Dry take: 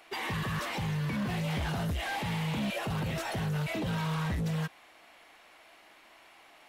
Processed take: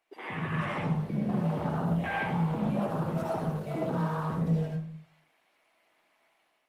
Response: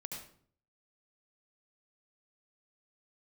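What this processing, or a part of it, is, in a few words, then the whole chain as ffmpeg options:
far-field microphone of a smart speaker: -filter_complex "[0:a]asplit=3[link_01][link_02][link_03];[link_01]afade=type=out:start_time=0.96:duration=0.02[link_04];[link_02]lowshelf=frequency=120:gain=-3,afade=type=in:start_time=0.96:duration=0.02,afade=type=out:start_time=2.03:duration=0.02[link_05];[link_03]afade=type=in:start_time=2.03:duration=0.02[link_06];[link_04][link_05][link_06]amix=inputs=3:normalize=0,afwtdn=0.0178,asplit=3[link_07][link_08][link_09];[link_07]afade=type=out:start_time=2.8:duration=0.02[link_10];[link_08]bass=frequency=250:gain=-4,treble=frequency=4000:gain=4,afade=type=in:start_time=2.8:duration=0.02,afade=type=out:start_time=4.37:duration=0.02[link_11];[link_09]afade=type=in:start_time=4.37:duration=0.02[link_12];[link_10][link_11][link_12]amix=inputs=3:normalize=0[link_13];[1:a]atrim=start_sample=2205[link_14];[link_13][link_14]afir=irnorm=-1:irlink=0,highpass=160,dynaudnorm=framelen=190:gausssize=5:maxgain=7.5dB" -ar 48000 -c:a libopus -b:a 32k

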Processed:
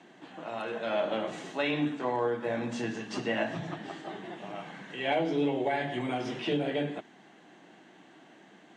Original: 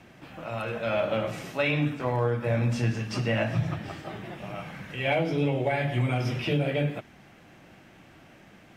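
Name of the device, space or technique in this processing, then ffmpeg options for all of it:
television speaker: -af "highpass=frequency=210:width=0.5412,highpass=frequency=210:width=1.3066,equalizer=frequency=230:width_type=q:width=4:gain=-4,equalizer=frequency=550:width_type=q:width=4:gain=-7,equalizer=frequency=1300:width_type=q:width=4:gain=-7,equalizer=frequency=2400:width_type=q:width=4:gain=-10,equalizer=frequency=5200:width_type=q:width=4:gain=-10,lowpass=frequency=7500:width=0.5412,lowpass=frequency=7500:width=1.3066,volume=1.5dB"

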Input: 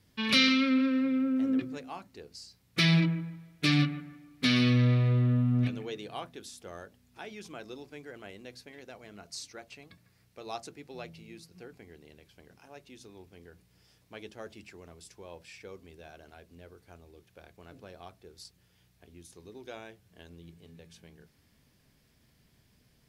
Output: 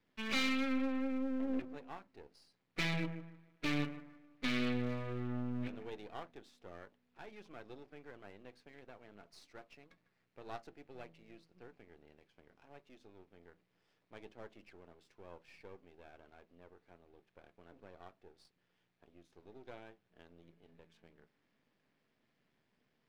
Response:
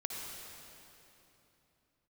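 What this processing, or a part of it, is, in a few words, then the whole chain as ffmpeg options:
crystal radio: -af "highpass=240,lowpass=2600,aeval=exprs='if(lt(val(0),0),0.251*val(0),val(0))':channel_layout=same,volume=-3.5dB"

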